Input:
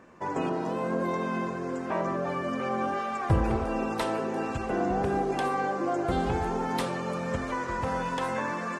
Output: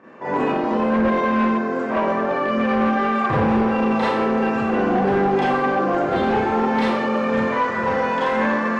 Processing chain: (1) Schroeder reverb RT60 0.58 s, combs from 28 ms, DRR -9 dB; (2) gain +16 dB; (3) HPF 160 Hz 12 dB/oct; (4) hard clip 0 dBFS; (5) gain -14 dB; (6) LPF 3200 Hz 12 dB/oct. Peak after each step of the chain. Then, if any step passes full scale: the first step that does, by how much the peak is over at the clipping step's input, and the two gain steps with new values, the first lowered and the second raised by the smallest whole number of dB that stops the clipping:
-5.0, +11.0, +8.5, 0.0, -14.0, -13.5 dBFS; step 2, 8.5 dB; step 2 +7 dB, step 5 -5 dB

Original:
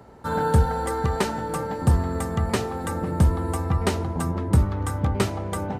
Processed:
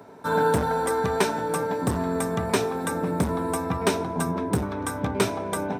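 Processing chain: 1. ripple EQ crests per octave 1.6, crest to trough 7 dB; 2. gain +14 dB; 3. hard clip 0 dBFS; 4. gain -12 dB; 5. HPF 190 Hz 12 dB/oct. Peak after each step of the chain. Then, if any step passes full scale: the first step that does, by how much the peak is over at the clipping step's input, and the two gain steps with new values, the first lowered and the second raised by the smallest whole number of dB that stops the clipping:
-6.5, +7.5, 0.0, -12.0, -8.0 dBFS; step 2, 7.5 dB; step 2 +6 dB, step 4 -4 dB

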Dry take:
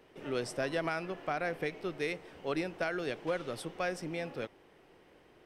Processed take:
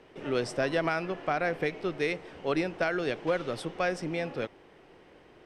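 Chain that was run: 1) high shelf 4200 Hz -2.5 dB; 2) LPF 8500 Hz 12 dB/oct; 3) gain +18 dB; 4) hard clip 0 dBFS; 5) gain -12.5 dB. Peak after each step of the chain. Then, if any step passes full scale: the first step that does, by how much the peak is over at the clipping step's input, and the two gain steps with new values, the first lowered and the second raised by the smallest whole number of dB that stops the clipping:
-20.0, -20.0, -2.0, -2.0, -14.5 dBFS; no overload

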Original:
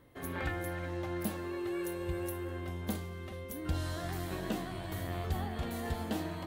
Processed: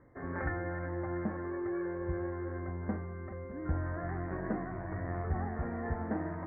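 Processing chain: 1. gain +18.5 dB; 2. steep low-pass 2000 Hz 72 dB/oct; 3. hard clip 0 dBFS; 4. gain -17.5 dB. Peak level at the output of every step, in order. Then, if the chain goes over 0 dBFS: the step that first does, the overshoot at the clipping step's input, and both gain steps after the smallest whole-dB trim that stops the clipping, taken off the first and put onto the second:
-4.5, -4.0, -4.0, -21.5 dBFS; no overload

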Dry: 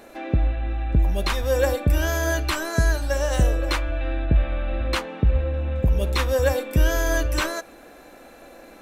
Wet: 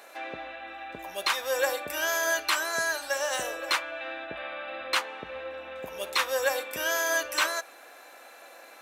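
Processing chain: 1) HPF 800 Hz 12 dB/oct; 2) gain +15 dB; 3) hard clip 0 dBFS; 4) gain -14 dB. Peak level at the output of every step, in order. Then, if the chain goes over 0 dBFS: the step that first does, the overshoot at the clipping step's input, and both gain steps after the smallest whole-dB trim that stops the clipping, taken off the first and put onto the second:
-11.5, +3.5, 0.0, -14.0 dBFS; step 2, 3.5 dB; step 2 +11 dB, step 4 -10 dB

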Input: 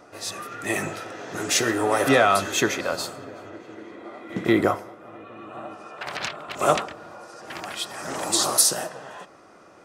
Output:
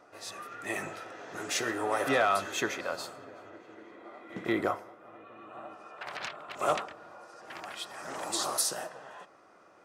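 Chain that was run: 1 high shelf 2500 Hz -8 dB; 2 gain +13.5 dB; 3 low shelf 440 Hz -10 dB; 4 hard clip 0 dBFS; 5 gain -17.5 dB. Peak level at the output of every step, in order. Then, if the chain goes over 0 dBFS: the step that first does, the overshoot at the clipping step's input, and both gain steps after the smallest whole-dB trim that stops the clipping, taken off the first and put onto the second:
-4.5, +9.0, +5.5, 0.0, -17.5 dBFS; step 2, 5.5 dB; step 2 +7.5 dB, step 5 -11.5 dB

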